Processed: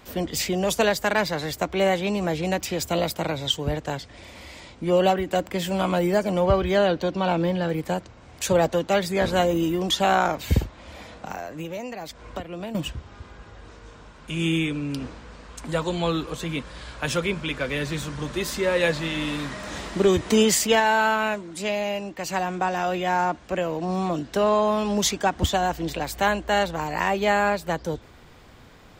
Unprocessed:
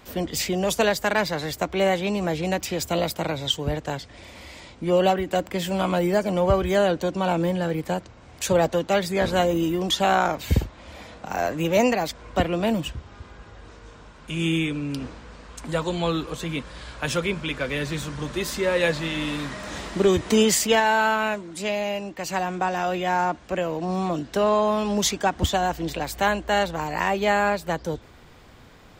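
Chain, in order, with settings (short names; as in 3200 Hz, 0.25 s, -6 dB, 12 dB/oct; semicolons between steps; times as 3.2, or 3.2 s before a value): 6.45–7.69 resonant high shelf 6000 Hz -7.5 dB, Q 1.5; 11.28–12.75 compressor 12:1, threshold -30 dBFS, peak gain reduction 16 dB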